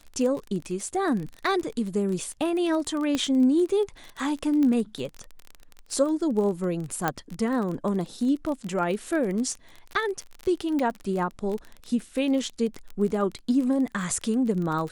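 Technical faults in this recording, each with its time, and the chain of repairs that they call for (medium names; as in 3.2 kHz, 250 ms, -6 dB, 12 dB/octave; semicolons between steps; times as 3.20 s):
crackle 26 per s -30 dBFS
3.15 s: pop -13 dBFS
4.63 s: pop -17 dBFS
7.08 s: pop -10 dBFS
10.79 s: pop -18 dBFS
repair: de-click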